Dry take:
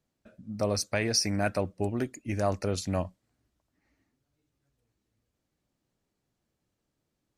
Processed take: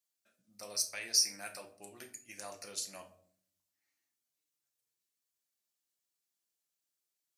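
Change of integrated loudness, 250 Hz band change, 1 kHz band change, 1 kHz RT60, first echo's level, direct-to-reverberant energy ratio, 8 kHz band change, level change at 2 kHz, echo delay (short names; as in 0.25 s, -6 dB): -4.0 dB, -25.5 dB, -16.0 dB, 0.50 s, none, 3.0 dB, +0.5 dB, -10.0 dB, none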